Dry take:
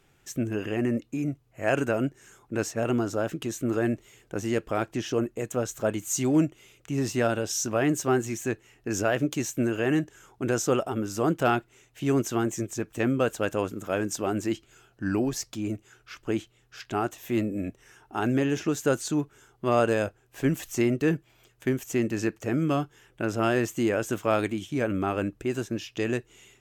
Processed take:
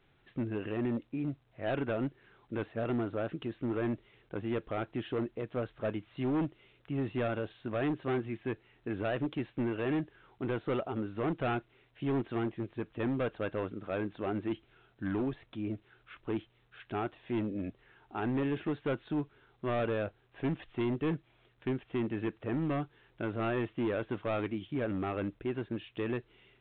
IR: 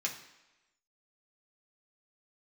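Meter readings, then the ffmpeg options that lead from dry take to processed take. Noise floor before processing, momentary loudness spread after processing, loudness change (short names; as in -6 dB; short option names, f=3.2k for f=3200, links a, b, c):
-64 dBFS, 7 LU, -7.5 dB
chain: -af "lowpass=f=2.9k:p=1,aresample=16000,volume=22dB,asoftclip=hard,volume=-22dB,aresample=44100,volume=-5.5dB" -ar 8000 -c:a pcm_alaw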